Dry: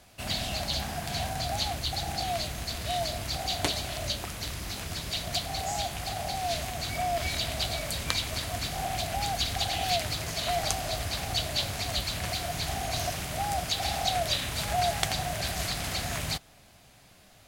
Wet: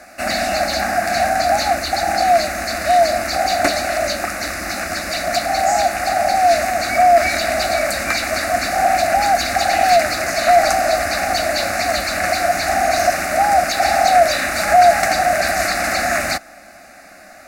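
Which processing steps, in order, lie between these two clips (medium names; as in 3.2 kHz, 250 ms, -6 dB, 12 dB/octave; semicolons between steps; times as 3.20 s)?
overdrive pedal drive 22 dB, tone 2.2 kHz, clips at -3.5 dBFS; static phaser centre 650 Hz, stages 8; trim +7.5 dB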